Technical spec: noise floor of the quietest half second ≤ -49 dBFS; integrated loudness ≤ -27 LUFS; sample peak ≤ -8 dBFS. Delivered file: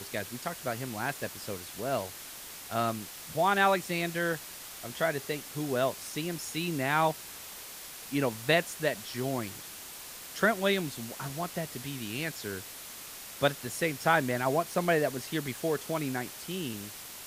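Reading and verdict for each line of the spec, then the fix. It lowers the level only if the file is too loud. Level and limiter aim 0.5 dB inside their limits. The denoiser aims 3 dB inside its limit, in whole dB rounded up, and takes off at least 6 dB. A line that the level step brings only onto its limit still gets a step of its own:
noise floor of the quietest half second -45 dBFS: fail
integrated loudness -32.0 LUFS: OK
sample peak -11.0 dBFS: OK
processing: denoiser 7 dB, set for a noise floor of -45 dBFS

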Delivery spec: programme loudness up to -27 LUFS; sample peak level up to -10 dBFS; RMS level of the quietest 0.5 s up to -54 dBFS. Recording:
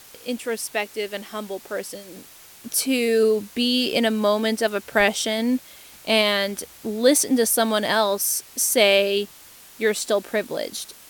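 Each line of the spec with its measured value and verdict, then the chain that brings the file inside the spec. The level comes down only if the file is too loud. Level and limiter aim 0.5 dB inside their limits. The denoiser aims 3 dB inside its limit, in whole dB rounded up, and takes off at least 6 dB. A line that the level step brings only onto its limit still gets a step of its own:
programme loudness -21.5 LUFS: fail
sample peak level -4.0 dBFS: fail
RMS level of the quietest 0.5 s -47 dBFS: fail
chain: denoiser 6 dB, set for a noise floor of -47 dBFS; gain -6 dB; limiter -10.5 dBFS

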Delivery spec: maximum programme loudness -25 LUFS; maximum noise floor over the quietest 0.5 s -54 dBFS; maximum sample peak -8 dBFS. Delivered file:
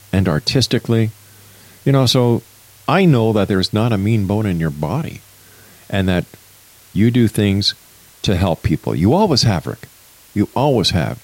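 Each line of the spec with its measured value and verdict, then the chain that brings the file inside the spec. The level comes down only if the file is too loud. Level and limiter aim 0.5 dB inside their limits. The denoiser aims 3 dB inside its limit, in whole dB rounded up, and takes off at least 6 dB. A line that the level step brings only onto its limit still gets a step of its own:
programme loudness -16.5 LUFS: fail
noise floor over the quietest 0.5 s -46 dBFS: fail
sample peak -3.0 dBFS: fail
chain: gain -9 dB

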